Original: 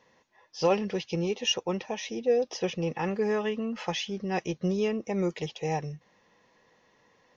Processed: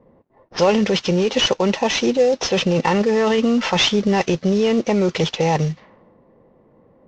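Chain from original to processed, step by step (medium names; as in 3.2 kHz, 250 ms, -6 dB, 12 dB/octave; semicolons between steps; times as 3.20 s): CVSD coder 32 kbps; in parallel at +1 dB: compressor with a negative ratio -32 dBFS, ratio -0.5; on the sum: speed mistake 24 fps film run at 25 fps; level-controlled noise filter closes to 400 Hz, open at -24.5 dBFS; trim +8 dB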